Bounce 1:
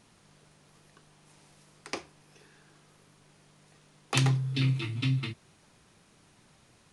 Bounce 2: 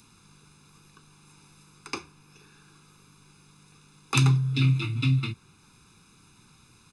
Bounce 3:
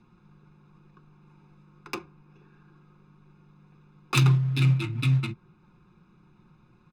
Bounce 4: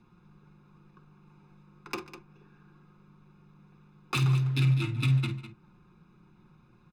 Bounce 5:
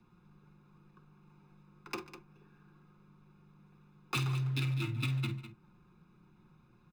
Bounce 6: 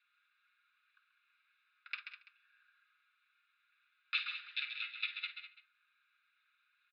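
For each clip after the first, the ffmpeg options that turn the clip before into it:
ffmpeg -i in.wav -filter_complex "[0:a]aecho=1:1:0.8:0.9,acrossover=split=120|3100[link_01][link_02][link_03];[link_03]acompressor=mode=upward:threshold=-57dB:ratio=2.5[link_04];[link_01][link_02][link_04]amix=inputs=3:normalize=0" out.wav
ffmpeg -i in.wav -af "acrusher=bits=6:mode=log:mix=0:aa=0.000001,aecho=1:1:5.6:0.57,adynamicsmooth=sensitivity=3.5:basefreq=1400" out.wav
ffmpeg -i in.wav -af "alimiter=limit=-17dB:level=0:latency=1:release=130,aecho=1:1:46|51|145|202:0.141|0.266|0.106|0.237,volume=-1.5dB" out.wav
ffmpeg -i in.wav -filter_complex "[0:a]acrossover=split=330|910|2100[link_01][link_02][link_03][link_04];[link_01]alimiter=level_in=1.5dB:limit=-24dB:level=0:latency=1,volume=-1.5dB[link_05];[link_04]acrusher=bits=3:mode=log:mix=0:aa=0.000001[link_06];[link_05][link_02][link_03][link_06]amix=inputs=4:normalize=0,volume=-4dB" out.wav
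ffmpeg -i in.wav -af "asuperpass=centerf=2500:order=12:qfactor=0.85,aecho=1:1:134:0.376,volume=2dB" out.wav

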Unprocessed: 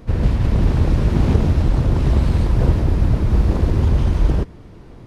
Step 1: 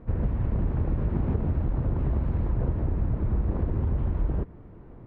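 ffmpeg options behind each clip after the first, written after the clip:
ffmpeg -i in.wav -af "lowpass=1900,aemphasis=mode=reproduction:type=75kf,acompressor=threshold=-16dB:ratio=4,volume=-6dB" out.wav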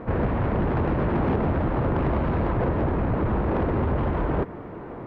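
ffmpeg -i in.wav -filter_complex "[0:a]asplit=2[link_01][link_02];[link_02]highpass=frequency=720:poles=1,volume=27dB,asoftclip=type=tanh:threshold=-14dB[link_03];[link_01][link_03]amix=inputs=2:normalize=0,lowpass=frequency=2000:poles=1,volume=-6dB" out.wav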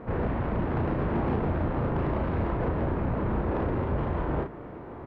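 ffmpeg -i in.wav -filter_complex "[0:a]asplit=2[link_01][link_02];[link_02]adelay=35,volume=-5dB[link_03];[link_01][link_03]amix=inputs=2:normalize=0,aecho=1:1:1081:0.075,volume=-5.5dB" out.wav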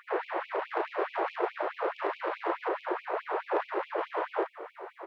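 ffmpeg -i in.wav -af "afftfilt=real='re*gte(b*sr/1024,310*pow(2300/310,0.5+0.5*sin(2*PI*4.7*pts/sr)))':imag='im*gte(b*sr/1024,310*pow(2300/310,0.5+0.5*sin(2*PI*4.7*pts/sr)))':win_size=1024:overlap=0.75,volume=4.5dB" out.wav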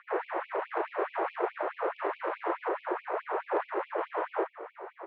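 ffmpeg -i in.wav -filter_complex "[0:a]acrossover=split=740|870[link_01][link_02][link_03];[link_02]asoftclip=type=hard:threshold=-37.5dB[link_04];[link_01][link_04][link_03]amix=inputs=3:normalize=0,highpass=180,lowpass=2400" out.wav

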